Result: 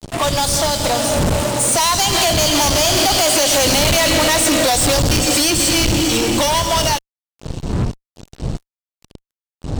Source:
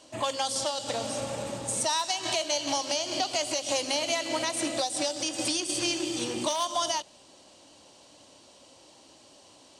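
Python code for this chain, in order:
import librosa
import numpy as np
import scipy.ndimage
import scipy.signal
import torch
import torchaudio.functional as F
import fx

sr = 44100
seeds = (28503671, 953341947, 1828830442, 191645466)

y = fx.dmg_wind(x, sr, seeds[0], corner_hz=140.0, level_db=-36.0)
y = fx.doppler_pass(y, sr, speed_mps=17, closest_m=13.0, pass_at_s=3.7)
y = fx.fuzz(y, sr, gain_db=46.0, gate_db=-52.0)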